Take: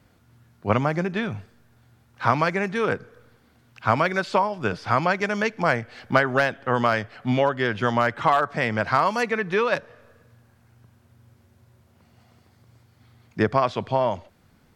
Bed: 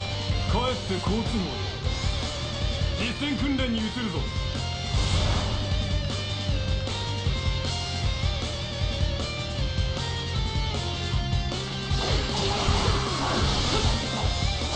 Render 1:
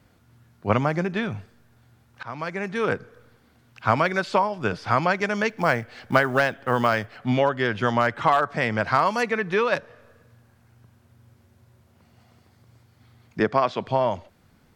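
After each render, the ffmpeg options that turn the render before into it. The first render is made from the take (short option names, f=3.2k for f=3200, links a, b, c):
-filter_complex "[0:a]asettb=1/sr,asplit=3[a][b][c];[a]atrim=end=5.494[d];[b]atrim=start=5.49:end=7.18,asetpts=PTS-STARTPTS,afade=t=in:d=0.004:c=qsin,afade=t=out:st=1.686:d=0.004:c=qsin,acrusher=bits=8:mode=log:mix=0:aa=0.000001[e];[c]atrim=start=7.176[f];[d][e]acrossfade=d=0.004:c1=hsin:c2=qsin[g];[g][f]acrossfade=d=0.004:c1=qsin:c2=hsin,asettb=1/sr,asplit=3[h][i][j];[h]atrim=end=13.404[k];[i]atrim=start=13.4:end=13.86,asetpts=PTS-STARTPTS,afade=t=in:d=0.004:c=qsin,afade=t=out:st=0.456:d=0.004:c=qsin,highpass=160,lowpass=7.1k[l];[j]atrim=start=13.856[m];[k][l]acrossfade=d=0.004:c1=hsin:c2=qsin[n];[n][m]acrossfade=d=0.004:c1=qsin:c2=hsin,asplit=2[o][p];[o]atrim=end=2.23,asetpts=PTS-STARTPTS,afade=t=out:st=2.226:d=0.004:c=hsin:silence=0.0668344[q];[p]atrim=start=2.23,asetpts=PTS-STARTPTS,afade=t=in:d=0.66:silence=0.0668344[r];[q][r]concat=n=2:v=0:a=1"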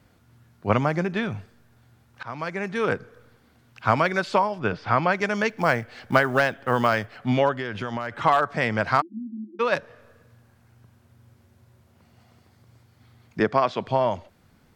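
-filter_complex "[0:a]asplit=3[a][b][c];[a]afade=t=out:st=4.59:d=0.02[d];[b]lowpass=3.8k,afade=t=in:st=4.59:d=0.02,afade=t=out:st=5.11:d=0.02[e];[c]afade=t=in:st=5.11:d=0.02[f];[d][e][f]amix=inputs=3:normalize=0,asplit=3[g][h][i];[g]afade=t=out:st=7.54:d=0.02[j];[h]acompressor=threshold=-25dB:ratio=6:attack=3.2:release=140:knee=1:detection=peak,afade=t=in:st=7.54:d=0.02,afade=t=out:st=8.11:d=0.02[k];[i]afade=t=in:st=8.11:d=0.02[l];[j][k][l]amix=inputs=3:normalize=0,asplit=3[m][n][o];[m]afade=t=out:st=9:d=0.02[p];[n]asuperpass=centerf=270:order=20:qfactor=2,afade=t=in:st=9:d=0.02,afade=t=out:st=9.59:d=0.02[q];[o]afade=t=in:st=9.59:d=0.02[r];[p][q][r]amix=inputs=3:normalize=0"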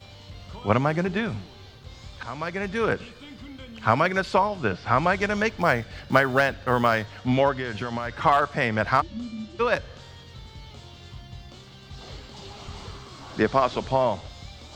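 -filter_complex "[1:a]volume=-16dB[a];[0:a][a]amix=inputs=2:normalize=0"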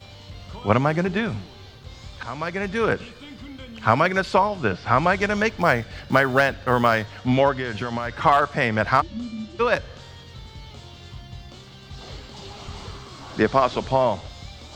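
-af "volume=2.5dB,alimiter=limit=-2dB:level=0:latency=1"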